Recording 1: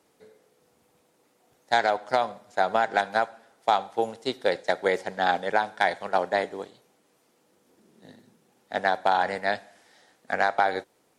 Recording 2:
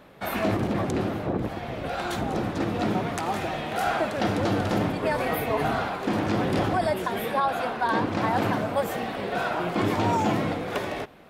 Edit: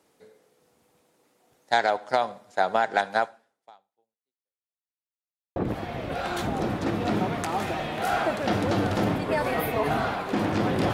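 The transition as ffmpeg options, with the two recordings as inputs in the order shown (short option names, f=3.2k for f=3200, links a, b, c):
-filter_complex "[0:a]apad=whole_dur=10.93,atrim=end=10.93,asplit=2[a][b];[a]atrim=end=4.82,asetpts=PTS-STARTPTS,afade=t=out:st=3.25:d=1.57:c=exp[c];[b]atrim=start=4.82:end=5.56,asetpts=PTS-STARTPTS,volume=0[d];[1:a]atrim=start=1.3:end=6.67,asetpts=PTS-STARTPTS,afade=t=in:d=0.004:c=hsin[e];[c][d][e]concat=n=3:v=0:a=1"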